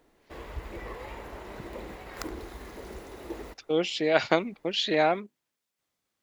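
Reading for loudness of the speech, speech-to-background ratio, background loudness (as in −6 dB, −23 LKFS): −26.5 LKFS, 15.0 dB, −41.5 LKFS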